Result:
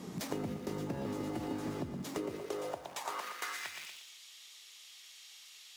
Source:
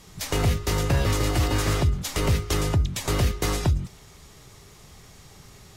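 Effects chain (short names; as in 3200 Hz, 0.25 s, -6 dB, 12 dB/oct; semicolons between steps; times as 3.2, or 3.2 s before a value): 0.86–1.82 whine 860 Hz -34 dBFS; 3.1–3.54 brick-wall FIR high-pass 160 Hz; in parallel at -7.5 dB: bit-crush 5-bit; on the sum: tilt shelf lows +6 dB, about 1100 Hz; on a send: thinning echo 0.118 s, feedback 40%, high-pass 210 Hz, level -9 dB; on the sum: high-pass sweep 230 Hz -> 3100 Hz, 2–4.03; compressor 6:1, threshold -39 dBFS, peak gain reduction 25 dB; gain +1 dB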